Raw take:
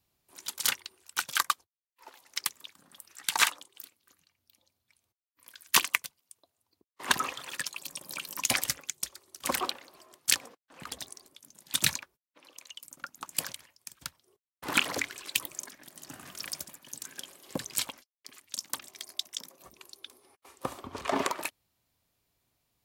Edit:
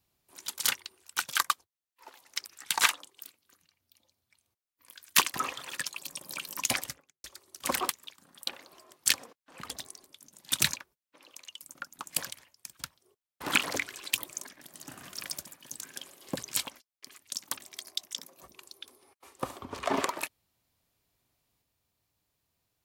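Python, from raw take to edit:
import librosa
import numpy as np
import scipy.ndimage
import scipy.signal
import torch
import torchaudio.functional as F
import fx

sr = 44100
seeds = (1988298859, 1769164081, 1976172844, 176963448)

y = fx.studio_fade_out(x, sr, start_s=8.41, length_s=0.63)
y = fx.edit(y, sr, fx.move(start_s=2.46, length_s=0.58, to_s=9.69),
    fx.cut(start_s=5.92, length_s=1.22), tone=tone)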